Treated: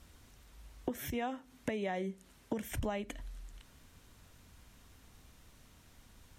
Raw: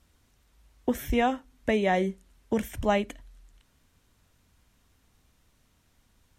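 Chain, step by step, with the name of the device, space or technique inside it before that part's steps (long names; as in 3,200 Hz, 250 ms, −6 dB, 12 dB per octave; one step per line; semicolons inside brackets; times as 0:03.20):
serial compression, peaks first (downward compressor 6 to 1, threshold −34 dBFS, peak gain reduction 14 dB; downward compressor 2 to 1, threshold −43 dBFS, peak gain reduction 7.5 dB)
0:00.90–0:02.72: high-pass filter 94 Hz 12 dB per octave
level +6 dB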